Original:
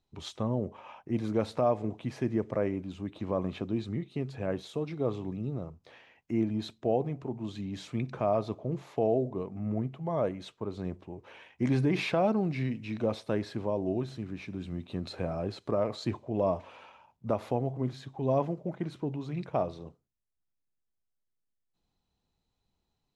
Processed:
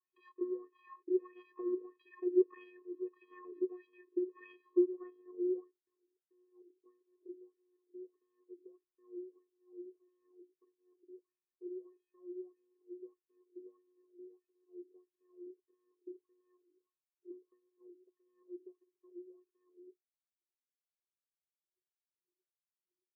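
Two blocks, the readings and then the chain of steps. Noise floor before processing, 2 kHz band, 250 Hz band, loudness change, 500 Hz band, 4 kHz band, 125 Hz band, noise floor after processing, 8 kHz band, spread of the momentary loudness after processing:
−81 dBFS, below −20 dB, −9.5 dB, −6.5 dB, −9.5 dB, below −30 dB, below −40 dB, below −85 dBFS, can't be measured, 22 LU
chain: in parallel at +2 dB: downward compressor, threshold −35 dBFS, peak gain reduction 13 dB
on the sum: low-pass filter sweep 1,600 Hz → 140 Hz, 0:04.50–0:06.15
channel vocoder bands 8, square 361 Hz
harmonic generator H 2 −31 dB, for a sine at −9 dBFS
LFO wah 1.6 Hz 310–3,300 Hz, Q 5
level −6 dB

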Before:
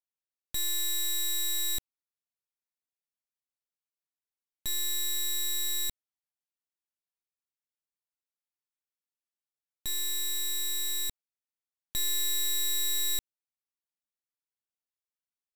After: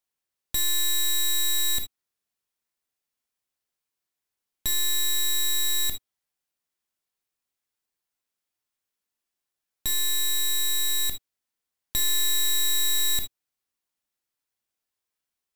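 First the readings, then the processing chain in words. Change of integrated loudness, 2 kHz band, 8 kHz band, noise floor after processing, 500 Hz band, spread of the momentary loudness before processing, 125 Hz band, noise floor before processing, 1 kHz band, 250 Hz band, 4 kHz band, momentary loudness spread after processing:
+5.5 dB, +8.0 dB, +5.0 dB, below −85 dBFS, can't be measured, 8 LU, +7.0 dB, below −85 dBFS, +8.5 dB, +4.5 dB, +6.0 dB, 8 LU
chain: reverb whose tail is shaped and stops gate 90 ms flat, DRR 6.5 dB
in parallel at 0 dB: brickwall limiter −28.5 dBFS, peak gain reduction 7 dB
on the sum: level +1.5 dB

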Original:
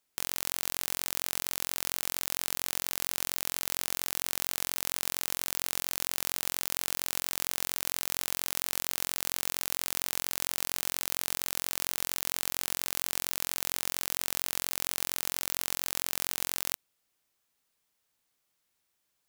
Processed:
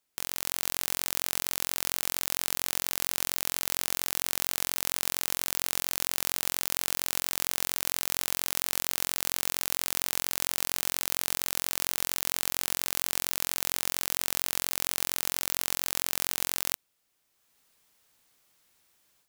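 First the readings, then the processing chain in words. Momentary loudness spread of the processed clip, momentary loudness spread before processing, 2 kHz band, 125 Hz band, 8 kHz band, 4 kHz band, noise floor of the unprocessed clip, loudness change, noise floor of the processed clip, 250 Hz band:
0 LU, 0 LU, +2.5 dB, +2.5 dB, +2.5 dB, +2.5 dB, −78 dBFS, +2.5 dB, −76 dBFS, +2.5 dB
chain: automatic gain control
level −1 dB

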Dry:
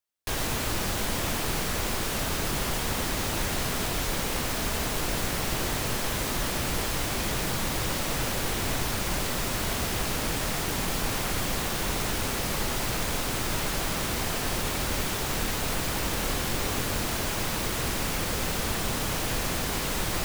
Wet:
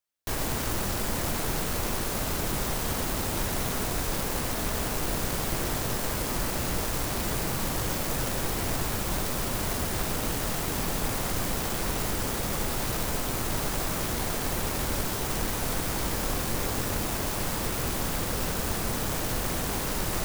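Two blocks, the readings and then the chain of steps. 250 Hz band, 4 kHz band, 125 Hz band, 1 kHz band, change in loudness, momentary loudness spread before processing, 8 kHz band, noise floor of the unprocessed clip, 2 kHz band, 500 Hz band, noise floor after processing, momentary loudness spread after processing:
0.0 dB, −3.5 dB, 0.0 dB, −1.0 dB, −1.0 dB, 0 LU, −1.0 dB, −30 dBFS, −3.0 dB, 0.0 dB, −31 dBFS, 0 LU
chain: stylus tracing distortion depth 0.49 ms

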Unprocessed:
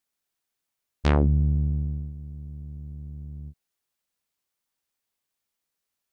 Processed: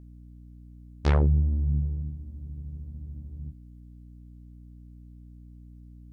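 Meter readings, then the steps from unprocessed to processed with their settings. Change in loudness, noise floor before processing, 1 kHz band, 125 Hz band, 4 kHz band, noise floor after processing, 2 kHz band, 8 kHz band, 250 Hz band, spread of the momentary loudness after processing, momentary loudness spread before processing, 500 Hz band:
−3.5 dB, −84 dBFS, −3.0 dB, −1.0 dB, −4.0 dB, −48 dBFS, −3.0 dB, can't be measured, −4.5 dB, 18 LU, 18 LU, −2.5 dB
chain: multi-voice chorus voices 2, 1.3 Hz, delay 13 ms, depth 3 ms
mains hum 60 Hz, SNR 17 dB

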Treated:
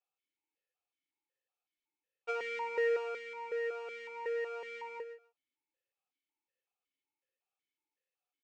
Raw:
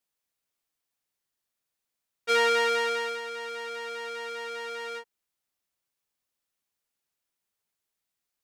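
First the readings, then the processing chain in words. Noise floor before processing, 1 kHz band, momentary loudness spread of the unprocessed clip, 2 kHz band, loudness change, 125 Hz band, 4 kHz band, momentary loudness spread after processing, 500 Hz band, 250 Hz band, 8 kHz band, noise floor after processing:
−85 dBFS, −11.5 dB, 14 LU, −10.5 dB, −9.0 dB, can't be measured, −20.5 dB, 14 LU, −5.0 dB, below −15 dB, below −20 dB, below −85 dBFS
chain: comb filter 2.3 ms, depth 75%
downward compressor 6 to 1, threshold −23 dBFS, peak gain reduction 7.5 dB
repeating echo 144 ms, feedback 19%, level −11.5 dB
formant filter that steps through the vowels 5.4 Hz
level +5.5 dB

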